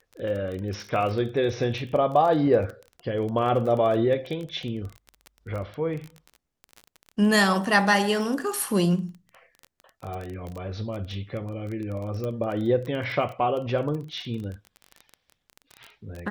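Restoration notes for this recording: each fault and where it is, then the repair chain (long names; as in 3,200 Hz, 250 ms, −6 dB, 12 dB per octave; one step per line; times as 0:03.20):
surface crackle 21 per second −31 dBFS
0:10.14: click
0:12.24: click −20 dBFS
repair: click removal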